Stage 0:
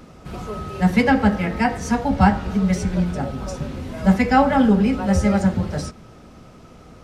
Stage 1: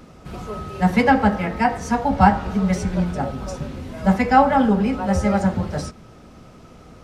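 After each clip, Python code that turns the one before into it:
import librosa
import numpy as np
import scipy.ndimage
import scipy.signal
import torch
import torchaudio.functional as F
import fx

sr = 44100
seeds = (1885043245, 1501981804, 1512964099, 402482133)

y = fx.dynamic_eq(x, sr, hz=880.0, q=0.91, threshold_db=-33.0, ratio=4.0, max_db=6)
y = fx.rider(y, sr, range_db=3, speed_s=2.0)
y = F.gain(torch.from_numpy(y), -3.0).numpy()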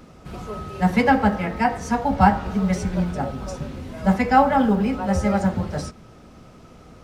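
y = fx.quant_float(x, sr, bits=6)
y = F.gain(torch.from_numpy(y), -1.5).numpy()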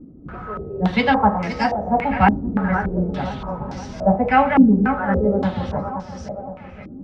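y = fx.echo_feedback(x, sr, ms=519, feedback_pct=53, wet_db=-11.0)
y = fx.filter_held_lowpass(y, sr, hz=3.5, low_hz=290.0, high_hz=5500.0)
y = F.gain(torch.from_numpy(y), -1.0).numpy()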